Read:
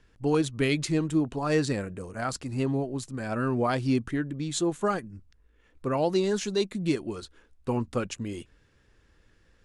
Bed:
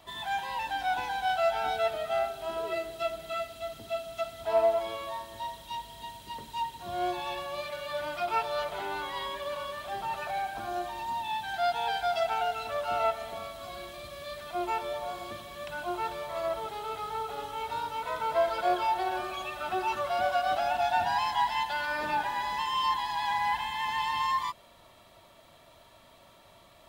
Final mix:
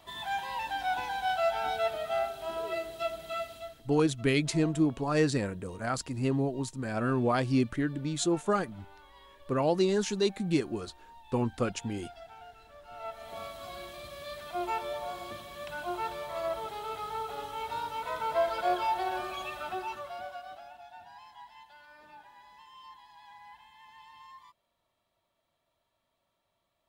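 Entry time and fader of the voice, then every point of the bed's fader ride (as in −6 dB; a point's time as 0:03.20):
3.65 s, −1.0 dB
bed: 0:03.55 −1.5 dB
0:04.01 −20.5 dB
0:12.84 −20.5 dB
0:13.40 −1.5 dB
0:19.54 −1.5 dB
0:20.84 −23 dB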